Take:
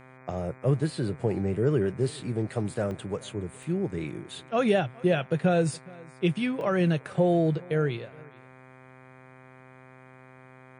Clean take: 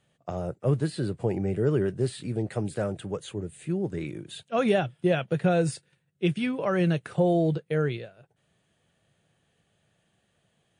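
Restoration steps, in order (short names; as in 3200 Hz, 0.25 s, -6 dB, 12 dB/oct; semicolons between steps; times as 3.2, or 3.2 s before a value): de-hum 129.5 Hz, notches 19; interpolate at 2.91/3.63/6.61, 1.3 ms; inverse comb 0.417 s -23.5 dB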